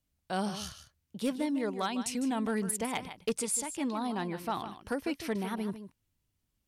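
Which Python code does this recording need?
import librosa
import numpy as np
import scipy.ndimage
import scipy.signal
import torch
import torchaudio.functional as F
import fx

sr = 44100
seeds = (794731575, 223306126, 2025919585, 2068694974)

y = fx.fix_declip(x, sr, threshold_db=-23.0)
y = fx.fix_echo_inverse(y, sr, delay_ms=153, level_db=-11.5)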